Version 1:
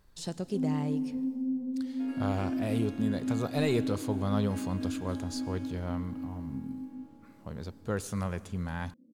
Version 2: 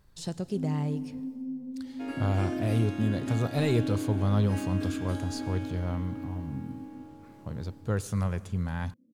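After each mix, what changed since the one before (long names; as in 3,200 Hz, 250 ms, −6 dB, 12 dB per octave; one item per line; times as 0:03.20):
first sound −5.5 dB
second sound +8.0 dB
master: add parametric band 110 Hz +8 dB 0.98 octaves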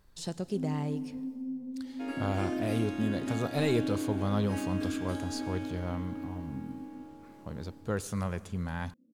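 master: add parametric band 110 Hz −8 dB 0.98 octaves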